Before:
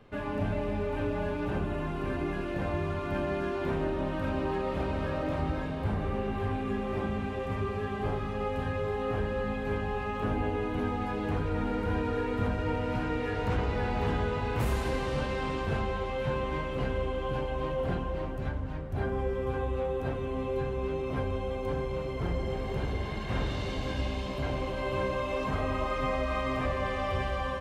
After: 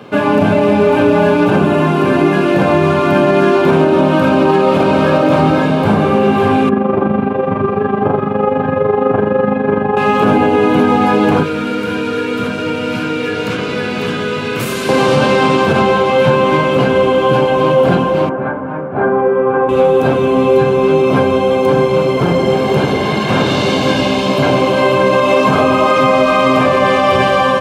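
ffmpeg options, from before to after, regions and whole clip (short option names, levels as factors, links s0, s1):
-filter_complex "[0:a]asettb=1/sr,asplit=3[s0][s1][s2];[s0]atrim=end=6.694[s3];[s1]atrim=start=6.69:end=9.97,asetpts=PTS-STARTPTS,afade=t=in:d=0.004:c=qsin,afade=t=out:st=3.276:d=0.004:c=qsin,lowpass=1500,tremolo=f=24:d=0.621[s4];[s2]atrim=start=9.966[s5];[s3][s4]acrossfade=d=0.004:c1=hsin:c2=qsin[s6];[s6][s5]acrossfade=d=0.004:c1=qsin:c2=hsin,asettb=1/sr,asplit=3[s7][s8][s9];[s7]atrim=end=11.434[s10];[s8]atrim=start=11.43:end=14.89,asetpts=PTS-STARTPTS,afade=t=in:d=0.004:c=qsin,afade=t=out:st=3.456:d=0.004:c=qsin,acrossover=split=120|510|1500[s11][s12][s13][s14];[s11]acompressor=threshold=0.00501:ratio=3[s15];[s12]acompressor=threshold=0.00708:ratio=3[s16];[s13]acompressor=threshold=0.00501:ratio=3[s17];[s14]acompressor=threshold=0.00631:ratio=3[s18];[s15][s16][s17][s18]amix=inputs=4:normalize=0,equalizer=f=830:t=o:w=0.43:g=-14[s19];[s9]atrim=start=14.886[s20];[s10][s19]acrossfade=d=0.004:c1=hsin:c2=qsin[s21];[s21][s20]acrossfade=d=0.004:c1=qsin:c2=hsin,asettb=1/sr,asplit=3[s22][s23][s24];[s22]atrim=end=18.294[s25];[s23]atrim=start=18.29:end=19.69,asetpts=PTS-STARTPTS,afade=t=in:d=0.004:c=qsin,afade=t=out:st=1.396:d=0.004:c=qsin,lowpass=f=1700:w=0.5412,lowpass=f=1700:w=1.3066,aemphasis=mode=production:type=bsi[s26];[s24]atrim=start=19.686[s27];[s25][s26]acrossfade=d=0.004:c1=hsin:c2=qsin[s28];[s28][s27]acrossfade=d=0.004:c1=qsin:c2=hsin,highpass=f=140:w=0.5412,highpass=f=140:w=1.3066,bandreject=f=1900:w=6.3,alimiter=level_in=15:limit=0.891:release=50:level=0:latency=1,volume=0.891"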